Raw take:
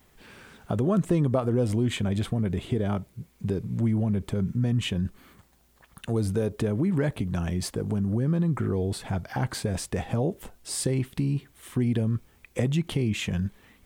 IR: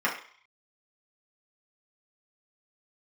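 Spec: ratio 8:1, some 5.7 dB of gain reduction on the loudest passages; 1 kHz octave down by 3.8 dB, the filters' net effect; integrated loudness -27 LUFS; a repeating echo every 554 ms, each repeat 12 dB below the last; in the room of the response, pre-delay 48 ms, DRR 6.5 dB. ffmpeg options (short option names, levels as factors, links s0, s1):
-filter_complex "[0:a]equalizer=f=1000:t=o:g=-5.5,acompressor=threshold=0.0501:ratio=8,aecho=1:1:554|1108|1662:0.251|0.0628|0.0157,asplit=2[s0][s1];[1:a]atrim=start_sample=2205,adelay=48[s2];[s1][s2]afir=irnorm=-1:irlink=0,volume=0.106[s3];[s0][s3]amix=inputs=2:normalize=0,volume=1.68"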